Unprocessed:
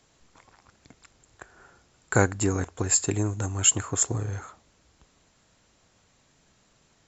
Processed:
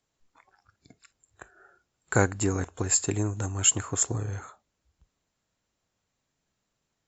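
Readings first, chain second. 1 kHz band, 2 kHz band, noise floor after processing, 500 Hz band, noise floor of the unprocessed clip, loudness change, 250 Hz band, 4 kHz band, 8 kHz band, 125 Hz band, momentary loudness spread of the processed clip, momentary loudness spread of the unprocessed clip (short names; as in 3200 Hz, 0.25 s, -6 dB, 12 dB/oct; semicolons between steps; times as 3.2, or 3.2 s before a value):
-1.5 dB, -1.5 dB, -81 dBFS, -1.5 dB, -65 dBFS, -1.5 dB, -1.5 dB, -1.5 dB, n/a, -1.5 dB, 9 LU, 9 LU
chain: spectral noise reduction 15 dB; gain -1.5 dB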